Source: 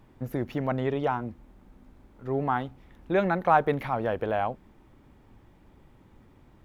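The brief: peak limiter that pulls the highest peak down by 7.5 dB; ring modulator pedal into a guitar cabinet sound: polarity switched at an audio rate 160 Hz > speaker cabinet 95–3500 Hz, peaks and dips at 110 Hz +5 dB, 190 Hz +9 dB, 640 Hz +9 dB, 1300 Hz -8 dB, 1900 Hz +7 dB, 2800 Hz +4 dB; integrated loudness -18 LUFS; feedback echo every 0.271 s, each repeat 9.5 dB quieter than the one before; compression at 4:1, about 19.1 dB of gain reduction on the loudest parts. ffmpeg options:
-af "acompressor=threshold=-39dB:ratio=4,alimiter=level_in=8.5dB:limit=-24dB:level=0:latency=1,volume=-8.5dB,aecho=1:1:271|542|813|1084:0.335|0.111|0.0365|0.012,aeval=exprs='val(0)*sgn(sin(2*PI*160*n/s))':c=same,highpass=95,equalizer=f=110:t=q:w=4:g=5,equalizer=f=190:t=q:w=4:g=9,equalizer=f=640:t=q:w=4:g=9,equalizer=f=1.3k:t=q:w=4:g=-8,equalizer=f=1.9k:t=q:w=4:g=7,equalizer=f=2.8k:t=q:w=4:g=4,lowpass=f=3.5k:w=0.5412,lowpass=f=3.5k:w=1.3066,volume=24dB"

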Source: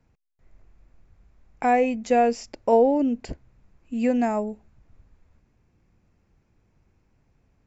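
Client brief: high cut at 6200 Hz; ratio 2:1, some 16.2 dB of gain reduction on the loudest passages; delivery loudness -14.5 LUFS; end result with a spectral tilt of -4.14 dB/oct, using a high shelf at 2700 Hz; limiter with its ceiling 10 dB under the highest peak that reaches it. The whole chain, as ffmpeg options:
-af "lowpass=6.2k,highshelf=f=2.7k:g=-7.5,acompressor=threshold=-46dB:ratio=2,volume=28.5dB,alimiter=limit=-5.5dB:level=0:latency=1"

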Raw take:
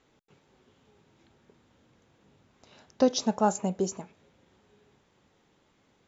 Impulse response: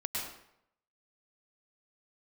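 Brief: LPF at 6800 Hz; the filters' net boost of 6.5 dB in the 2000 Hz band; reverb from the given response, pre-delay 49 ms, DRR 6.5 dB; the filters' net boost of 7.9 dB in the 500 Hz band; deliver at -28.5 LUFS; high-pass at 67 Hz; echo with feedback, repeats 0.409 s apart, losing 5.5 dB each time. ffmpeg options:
-filter_complex "[0:a]highpass=67,lowpass=6.8k,equalizer=f=500:t=o:g=8.5,equalizer=f=2k:t=o:g=9,aecho=1:1:409|818|1227|1636|2045|2454|2863:0.531|0.281|0.149|0.079|0.0419|0.0222|0.0118,asplit=2[a][b];[1:a]atrim=start_sample=2205,adelay=49[c];[b][c]afir=irnorm=-1:irlink=0,volume=-10.5dB[d];[a][d]amix=inputs=2:normalize=0,volume=-6dB"

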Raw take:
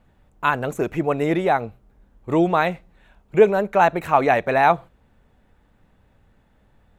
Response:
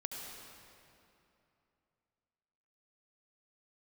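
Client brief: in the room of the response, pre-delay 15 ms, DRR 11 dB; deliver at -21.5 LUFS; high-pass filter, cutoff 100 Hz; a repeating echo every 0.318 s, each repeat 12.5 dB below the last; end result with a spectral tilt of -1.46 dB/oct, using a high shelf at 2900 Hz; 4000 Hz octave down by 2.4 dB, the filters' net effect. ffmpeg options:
-filter_complex "[0:a]highpass=100,highshelf=f=2.9k:g=8,equalizer=f=4k:t=o:g=-9,aecho=1:1:318|636|954:0.237|0.0569|0.0137,asplit=2[a][b];[1:a]atrim=start_sample=2205,adelay=15[c];[b][c]afir=irnorm=-1:irlink=0,volume=-11dB[d];[a][d]amix=inputs=2:normalize=0,volume=-1.5dB"

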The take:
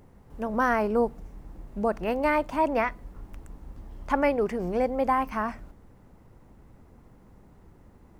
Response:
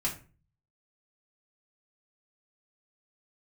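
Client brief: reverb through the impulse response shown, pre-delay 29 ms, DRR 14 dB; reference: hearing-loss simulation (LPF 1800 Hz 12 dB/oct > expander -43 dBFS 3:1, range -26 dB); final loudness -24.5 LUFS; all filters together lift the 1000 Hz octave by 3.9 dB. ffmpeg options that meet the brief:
-filter_complex "[0:a]equalizer=f=1k:t=o:g=5,asplit=2[a][b];[1:a]atrim=start_sample=2205,adelay=29[c];[b][c]afir=irnorm=-1:irlink=0,volume=-19dB[d];[a][d]amix=inputs=2:normalize=0,lowpass=1.8k,agate=range=-26dB:threshold=-43dB:ratio=3,volume=0.5dB"

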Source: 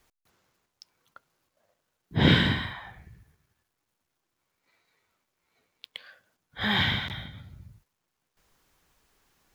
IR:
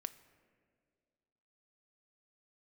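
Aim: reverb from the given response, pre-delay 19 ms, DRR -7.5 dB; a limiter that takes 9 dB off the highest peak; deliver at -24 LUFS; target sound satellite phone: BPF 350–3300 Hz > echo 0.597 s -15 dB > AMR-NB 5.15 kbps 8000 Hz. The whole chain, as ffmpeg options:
-filter_complex "[0:a]alimiter=limit=-16.5dB:level=0:latency=1,asplit=2[a][b];[1:a]atrim=start_sample=2205,adelay=19[c];[b][c]afir=irnorm=-1:irlink=0,volume=10.5dB[d];[a][d]amix=inputs=2:normalize=0,highpass=350,lowpass=3.3k,aecho=1:1:597:0.178,volume=6.5dB" -ar 8000 -c:a libopencore_amrnb -b:a 5150

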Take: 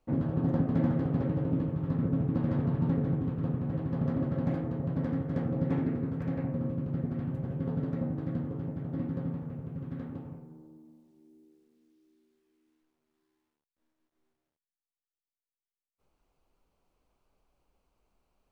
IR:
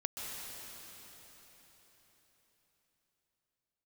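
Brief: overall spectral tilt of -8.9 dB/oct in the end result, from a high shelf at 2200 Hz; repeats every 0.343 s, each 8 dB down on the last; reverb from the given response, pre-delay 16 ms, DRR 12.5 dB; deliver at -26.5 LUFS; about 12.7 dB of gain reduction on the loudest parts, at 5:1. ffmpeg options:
-filter_complex "[0:a]highshelf=f=2.2k:g=8.5,acompressor=threshold=-39dB:ratio=5,aecho=1:1:343|686|1029|1372|1715:0.398|0.159|0.0637|0.0255|0.0102,asplit=2[a][b];[1:a]atrim=start_sample=2205,adelay=16[c];[b][c]afir=irnorm=-1:irlink=0,volume=-14.5dB[d];[a][d]amix=inputs=2:normalize=0,volume=15dB"

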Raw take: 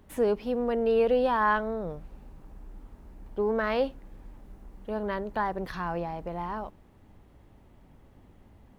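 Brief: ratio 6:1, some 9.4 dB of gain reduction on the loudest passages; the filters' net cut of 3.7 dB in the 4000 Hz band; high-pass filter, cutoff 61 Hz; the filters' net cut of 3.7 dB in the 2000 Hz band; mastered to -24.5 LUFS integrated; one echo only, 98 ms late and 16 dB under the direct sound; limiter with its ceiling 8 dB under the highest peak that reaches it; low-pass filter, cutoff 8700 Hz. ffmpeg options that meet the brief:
-af "highpass=61,lowpass=8.7k,equalizer=f=2k:t=o:g=-4.5,equalizer=f=4k:t=o:g=-3,acompressor=threshold=-31dB:ratio=6,alimiter=level_in=6dB:limit=-24dB:level=0:latency=1,volume=-6dB,aecho=1:1:98:0.158,volume=14.5dB"

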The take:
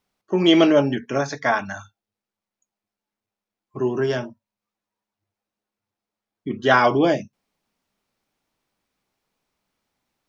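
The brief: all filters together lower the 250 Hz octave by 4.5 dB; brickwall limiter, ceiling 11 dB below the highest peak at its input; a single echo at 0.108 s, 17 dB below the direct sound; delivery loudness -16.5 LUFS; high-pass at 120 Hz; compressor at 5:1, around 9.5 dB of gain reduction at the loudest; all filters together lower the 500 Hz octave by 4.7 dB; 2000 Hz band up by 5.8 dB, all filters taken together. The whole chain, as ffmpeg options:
-af "highpass=120,equalizer=f=250:t=o:g=-3.5,equalizer=f=500:t=o:g=-6,equalizer=f=2k:t=o:g=8.5,acompressor=threshold=-19dB:ratio=5,alimiter=limit=-18.5dB:level=0:latency=1,aecho=1:1:108:0.141,volume=13dB"

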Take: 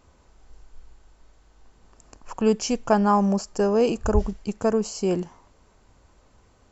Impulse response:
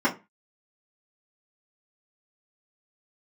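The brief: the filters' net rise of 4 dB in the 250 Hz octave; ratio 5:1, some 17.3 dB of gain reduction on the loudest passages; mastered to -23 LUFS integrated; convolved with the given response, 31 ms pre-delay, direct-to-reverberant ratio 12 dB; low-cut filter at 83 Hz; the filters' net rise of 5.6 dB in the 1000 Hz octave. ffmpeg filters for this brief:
-filter_complex "[0:a]highpass=83,equalizer=f=250:t=o:g=5,equalizer=f=1k:t=o:g=6.5,acompressor=threshold=-31dB:ratio=5,asplit=2[a][b];[1:a]atrim=start_sample=2205,adelay=31[c];[b][c]afir=irnorm=-1:irlink=0,volume=-26.5dB[d];[a][d]amix=inputs=2:normalize=0,volume=11dB"

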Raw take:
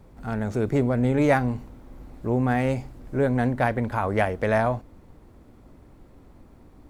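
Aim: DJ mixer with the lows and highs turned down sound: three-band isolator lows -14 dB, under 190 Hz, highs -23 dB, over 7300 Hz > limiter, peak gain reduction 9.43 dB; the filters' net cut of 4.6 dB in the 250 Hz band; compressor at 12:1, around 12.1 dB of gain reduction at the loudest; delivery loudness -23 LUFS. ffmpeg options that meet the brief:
-filter_complex "[0:a]equalizer=f=250:t=o:g=-3,acompressor=threshold=-27dB:ratio=12,acrossover=split=190 7300:gain=0.2 1 0.0708[a][b][c];[a][b][c]amix=inputs=3:normalize=0,volume=15dB,alimiter=limit=-11.5dB:level=0:latency=1"

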